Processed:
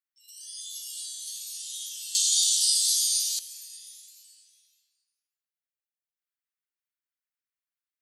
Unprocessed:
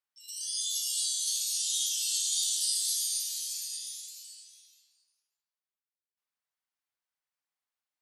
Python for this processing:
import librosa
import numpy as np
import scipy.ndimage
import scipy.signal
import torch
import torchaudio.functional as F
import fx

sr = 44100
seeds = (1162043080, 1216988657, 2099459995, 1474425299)

y = scipy.signal.sosfilt(scipy.signal.butter(4, 1400.0, 'highpass', fs=sr, output='sos'), x)
y = fx.peak_eq(y, sr, hz=5300.0, db=fx.steps((0.0, -8.0), (2.15, 7.5), (3.39, -7.5)), octaves=2.6)